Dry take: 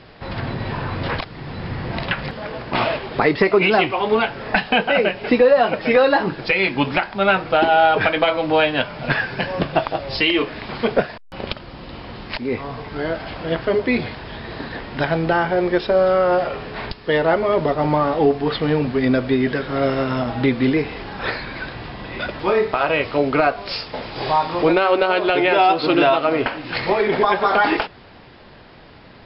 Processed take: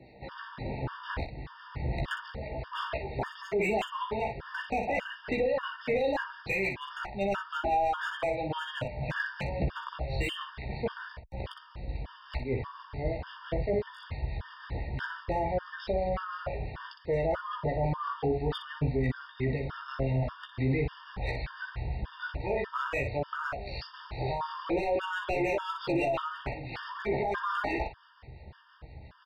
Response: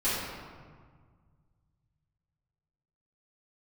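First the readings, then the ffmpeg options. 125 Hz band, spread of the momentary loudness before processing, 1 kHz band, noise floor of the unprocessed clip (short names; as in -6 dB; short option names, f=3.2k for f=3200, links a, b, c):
-6.5 dB, 14 LU, -14.0 dB, -43 dBFS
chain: -filter_complex "[0:a]acrossover=split=1100[a][b];[a]aeval=exprs='val(0)*(1-0.5/2+0.5/2*cos(2*PI*5.9*n/s))':c=same[c];[b]aeval=exprs='val(0)*(1-0.5/2-0.5/2*cos(2*PI*5.9*n/s))':c=same[d];[c][d]amix=inputs=2:normalize=0,acrossover=split=130|990[e][f][g];[e]highpass=43[h];[g]volume=19.5dB,asoftclip=hard,volume=-19.5dB[i];[h][f][i]amix=inputs=3:normalize=0,highshelf=f=2.8k:g=-7,asplit=2[j][k];[k]aecho=0:1:15|60:0.631|0.422[l];[j][l]amix=inputs=2:normalize=0,asubboost=boost=10:cutoff=75,alimiter=limit=-13.5dB:level=0:latency=1:release=19,afftfilt=real='re*gt(sin(2*PI*1.7*pts/sr)*(1-2*mod(floor(b*sr/1024/920),2)),0)':imag='im*gt(sin(2*PI*1.7*pts/sr)*(1-2*mod(floor(b*sr/1024/920),2)),0)':win_size=1024:overlap=0.75,volume=-6.5dB"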